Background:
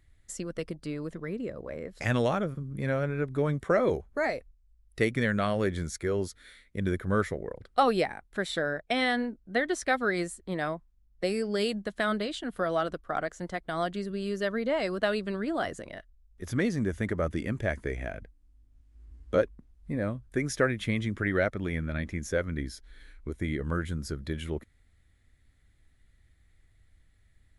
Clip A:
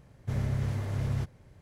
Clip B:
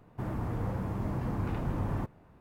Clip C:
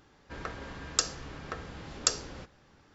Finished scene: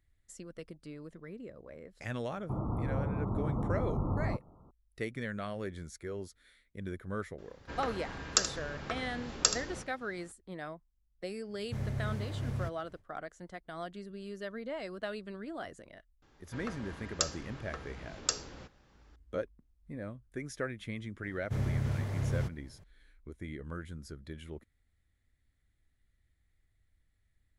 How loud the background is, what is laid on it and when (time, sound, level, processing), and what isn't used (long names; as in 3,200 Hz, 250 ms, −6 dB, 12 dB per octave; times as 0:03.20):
background −11 dB
0:02.31: mix in B −0.5 dB + linear-phase brick-wall low-pass 1,400 Hz
0:07.38: mix in C + single-tap delay 78 ms −11.5 dB
0:11.44: mix in A −5.5 dB, fades 0.10 s
0:16.22: mix in C −4.5 dB
0:21.23: mix in A −2 dB